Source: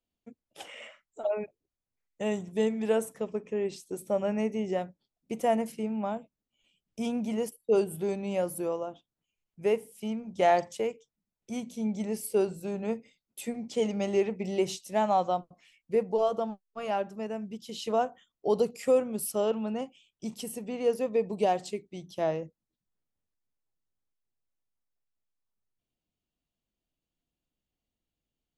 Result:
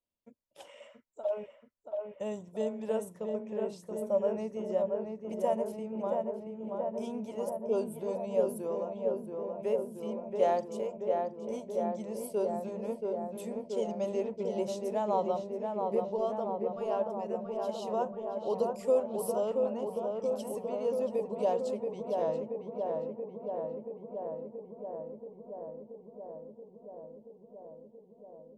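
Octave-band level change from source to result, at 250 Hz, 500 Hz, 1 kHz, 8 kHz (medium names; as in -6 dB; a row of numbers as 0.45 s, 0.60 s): -5.0 dB, -1.0 dB, -4.0 dB, -8.5 dB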